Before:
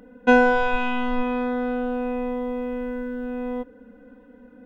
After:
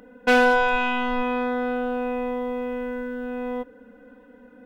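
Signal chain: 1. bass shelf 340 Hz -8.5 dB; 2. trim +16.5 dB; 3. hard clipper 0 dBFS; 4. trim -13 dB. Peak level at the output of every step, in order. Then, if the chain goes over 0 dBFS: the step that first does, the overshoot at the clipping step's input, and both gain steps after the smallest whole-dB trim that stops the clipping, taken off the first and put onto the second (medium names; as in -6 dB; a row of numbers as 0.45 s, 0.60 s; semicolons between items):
-6.5 dBFS, +10.0 dBFS, 0.0 dBFS, -13.0 dBFS; step 2, 10.0 dB; step 2 +6.5 dB, step 4 -3 dB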